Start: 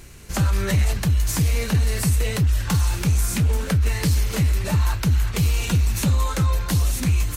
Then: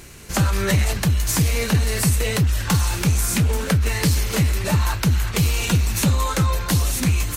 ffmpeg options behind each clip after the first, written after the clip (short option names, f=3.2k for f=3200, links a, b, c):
-af "lowshelf=f=98:g=-8,volume=4.5dB"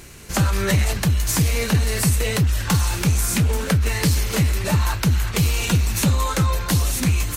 -af anull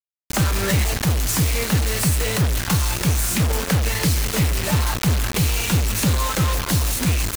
-af "acrusher=bits=3:mix=0:aa=0.000001,volume=-1dB"